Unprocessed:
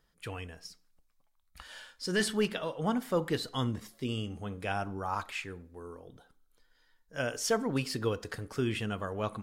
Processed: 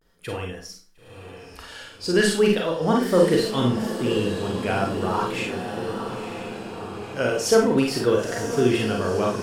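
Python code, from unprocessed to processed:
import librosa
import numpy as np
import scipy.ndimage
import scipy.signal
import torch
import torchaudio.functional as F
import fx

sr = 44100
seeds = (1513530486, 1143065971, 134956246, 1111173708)

y = fx.peak_eq(x, sr, hz=390.0, db=6.5, octaves=1.1)
y = fx.echo_diffused(y, sr, ms=988, feedback_pct=65, wet_db=-9)
y = fx.vibrato(y, sr, rate_hz=0.39, depth_cents=59.0)
y = fx.rev_schroeder(y, sr, rt60_s=0.32, comb_ms=33, drr_db=0.0)
y = y * librosa.db_to_amplitude(5.0)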